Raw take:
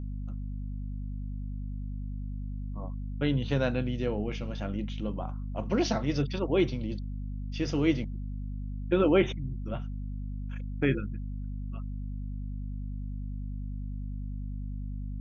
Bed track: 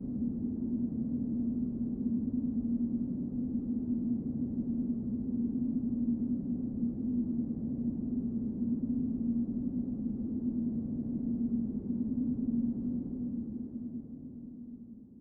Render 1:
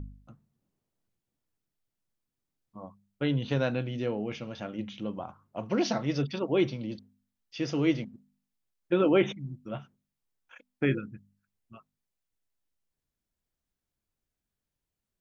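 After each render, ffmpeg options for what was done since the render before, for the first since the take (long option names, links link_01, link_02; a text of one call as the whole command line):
ffmpeg -i in.wav -af "bandreject=frequency=50:width_type=h:width=4,bandreject=frequency=100:width_type=h:width=4,bandreject=frequency=150:width_type=h:width=4,bandreject=frequency=200:width_type=h:width=4,bandreject=frequency=250:width_type=h:width=4" out.wav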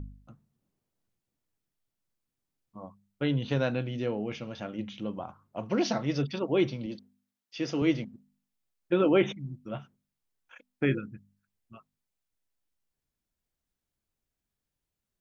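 ffmpeg -i in.wav -filter_complex "[0:a]asettb=1/sr,asplit=3[link_01][link_02][link_03];[link_01]atrim=end=6.864[link_04];[link_02]atrim=start=6.86:end=7.82,asetpts=PTS-STARTPTS,afade=type=in:duration=0.004:curve=qsin,afade=type=out:start_time=0.956:duration=0.004:curve=qsin,highpass=160[link_05];[link_03]atrim=start=7.816[link_06];[link_04][link_05]acrossfade=duration=0.004:curve1=hsin:curve2=qsin[link_07];[link_07][link_06]acrossfade=duration=0.004:curve1=qsin:curve2=hsin" out.wav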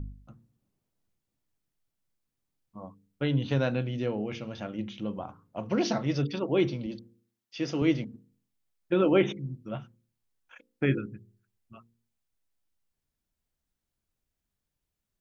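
ffmpeg -i in.wav -af "lowshelf=frequency=180:gain=4,bandreject=frequency=57.76:width_type=h:width=4,bandreject=frequency=115.52:width_type=h:width=4,bandreject=frequency=173.28:width_type=h:width=4,bandreject=frequency=231.04:width_type=h:width=4,bandreject=frequency=288.8:width_type=h:width=4,bandreject=frequency=346.56:width_type=h:width=4,bandreject=frequency=404.32:width_type=h:width=4,bandreject=frequency=462.08:width_type=h:width=4,bandreject=frequency=519.84:width_type=h:width=4" out.wav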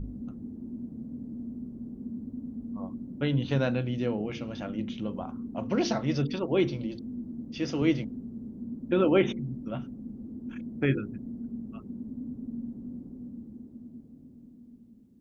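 ffmpeg -i in.wav -i bed.wav -filter_complex "[1:a]volume=-5.5dB[link_01];[0:a][link_01]amix=inputs=2:normalize=0" out.wav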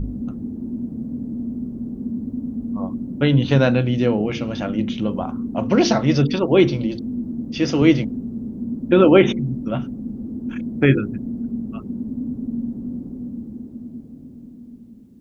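ffmpeg -i in.wav -af "volume=11dB,alimiter=limit=-1dB:level=0:latency=1" out.wav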